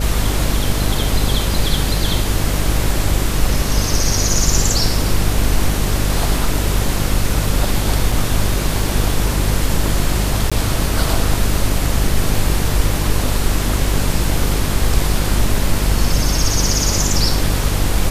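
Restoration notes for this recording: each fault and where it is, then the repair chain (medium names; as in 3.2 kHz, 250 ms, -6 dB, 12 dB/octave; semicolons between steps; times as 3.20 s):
buzz 50 Hz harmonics 11 -20 dBFS
8.12 s: dropout 3.5 ms
10.50–10.52 s: dropout 16 ms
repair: de-hum 50 Hz, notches 11; interpolate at 8.12 s, 3.5 ms; interpolate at 10.50 s, 16 ms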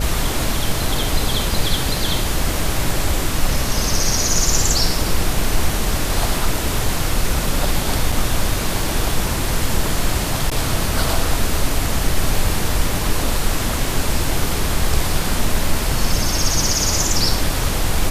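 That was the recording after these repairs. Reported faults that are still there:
nothing left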